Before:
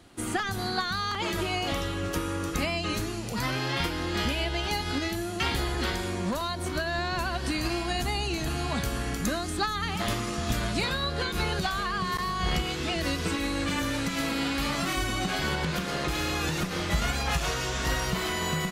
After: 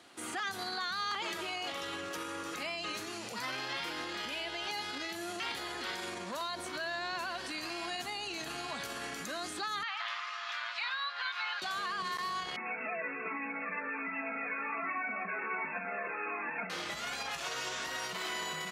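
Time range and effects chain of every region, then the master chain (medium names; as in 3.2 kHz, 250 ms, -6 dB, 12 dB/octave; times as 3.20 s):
9.83–11.62 s: high-pass 1 kHz 24 dB/octave + distance through air 240 m
12.56–16.70 s: brick-wall FIR band-pass 170–2700 Hz + comb 4.5 ms, depth 74% + Shepard-style flanger falling 1.3 Hz
whole clip: peak limiter -27.5 dBFS; frequency weighting A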